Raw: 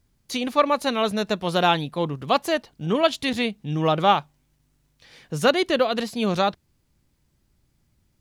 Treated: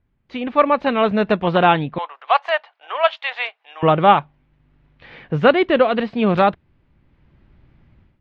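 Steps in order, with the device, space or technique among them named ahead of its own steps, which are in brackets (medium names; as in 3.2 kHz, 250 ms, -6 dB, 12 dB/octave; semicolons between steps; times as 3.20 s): 1.98–3.83 s: steep high-pass 680 Hz 36 dB/octave; action camera in a waterproof case (low-pass 2.7 kHz 24 dB/octave; level rider gain up to 15.5 dB; trim -1 dB; AAC 48 kbps 48 kHz)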